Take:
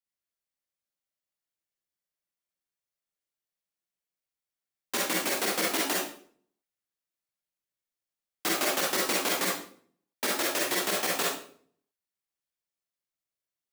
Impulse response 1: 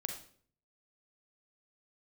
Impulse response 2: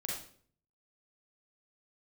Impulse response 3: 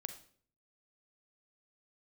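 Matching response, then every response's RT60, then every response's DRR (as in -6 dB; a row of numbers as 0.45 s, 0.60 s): 2; 0.55 s, 0.50 s, 0.50 s; 3.5 dB, -3.5 dB, 8.0 dB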